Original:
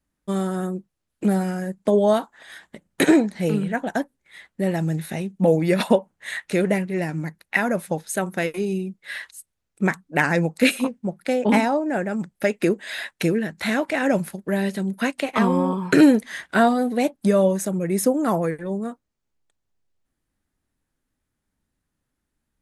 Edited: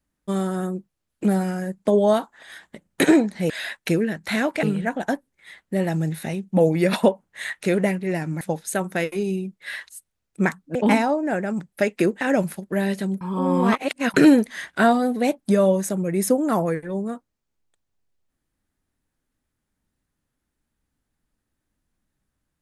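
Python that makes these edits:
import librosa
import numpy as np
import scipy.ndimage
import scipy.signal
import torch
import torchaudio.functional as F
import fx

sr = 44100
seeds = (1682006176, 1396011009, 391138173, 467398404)

y = fx.edit(x, sr, fx.cut(start_s=7.28, length_s=0.55),
    fx.cut(start_s=10.17, length_s=1.21),
    fx.move(start_s=12.84, length_s=1.13, to_s=3.5),
    fx.reverse_span(start_s=14.97, length_s=0.93), tone=tone)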